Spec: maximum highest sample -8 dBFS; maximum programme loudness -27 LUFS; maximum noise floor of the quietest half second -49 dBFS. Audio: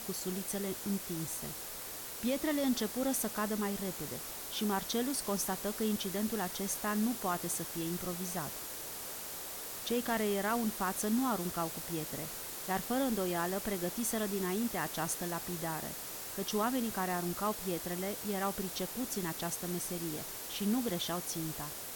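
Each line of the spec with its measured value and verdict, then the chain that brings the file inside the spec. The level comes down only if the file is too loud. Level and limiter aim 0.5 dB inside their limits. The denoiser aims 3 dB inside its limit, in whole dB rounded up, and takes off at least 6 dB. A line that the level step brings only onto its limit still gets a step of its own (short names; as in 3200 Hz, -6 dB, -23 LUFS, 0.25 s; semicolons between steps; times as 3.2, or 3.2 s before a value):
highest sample -21.0 dBFS: OK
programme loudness -35.0 LUFS: OK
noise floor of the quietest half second -44 dBFS: fail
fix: denoiser 8 dB, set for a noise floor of -44 dBFS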